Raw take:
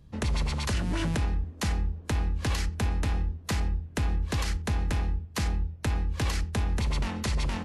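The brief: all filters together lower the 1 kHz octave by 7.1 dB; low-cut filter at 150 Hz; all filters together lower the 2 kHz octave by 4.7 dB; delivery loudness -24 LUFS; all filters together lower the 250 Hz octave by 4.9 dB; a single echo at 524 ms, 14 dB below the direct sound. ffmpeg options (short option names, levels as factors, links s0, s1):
-af "highpass=150,equalizer=f=250:t=o:g=-5,equalizer=f=1000:t=o:g=-8,equalizer=f=2000:t=o:g=-3.5,aecho=1:1:524:0.2,volume=4.73"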